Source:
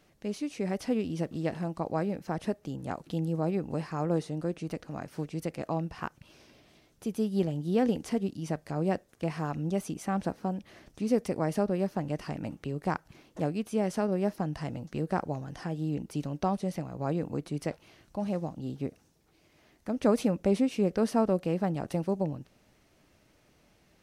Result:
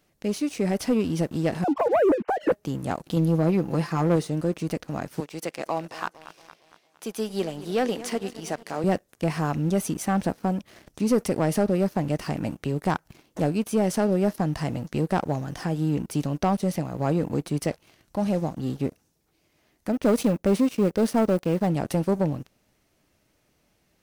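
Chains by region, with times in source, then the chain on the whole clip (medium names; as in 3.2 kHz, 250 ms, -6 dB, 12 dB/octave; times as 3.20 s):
1.64–2.52 s: formants replaced by sine waves + bass shelf 360 Hz +11.5 dB
3.16–4.16 s: high-pass 97 Hz 6 dB/octave + band-stop 7.9 kHz, Q 5.5 + comb 5.9 ms, depth 54%
5.20–8.84 s: frequency weighting A + modulated delay 229 ms, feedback 63%, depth 71 cents, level -16 dB
19.92–21.67 s: companding laws mixed up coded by A + tape noise reduction on one side only decoder only
whole clip: treble shelf 8.5 kHz +8.5 dB; waveshaping leveller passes 2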